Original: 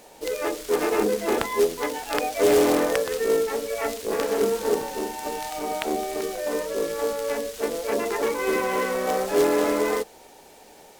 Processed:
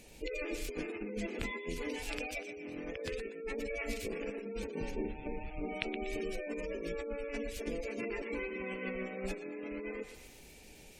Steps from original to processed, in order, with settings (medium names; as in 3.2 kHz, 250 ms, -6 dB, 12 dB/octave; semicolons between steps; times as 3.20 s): 4.91–5.69 s: median filter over 25 samples; compressor with a negative ratio -28 dBFS, ratio -1; peaking EQ 2.4 kHz +9.5 dB 0.48 oct; thinning echo 121 ms, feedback 57%, high-pass 790 Hz, level -7.5 dB; 3.57–4.16 s: modulation noise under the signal 23 dB; spectral gate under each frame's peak -25 dB strong; amplifier tone stack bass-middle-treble 10-0-1; trim +12 dB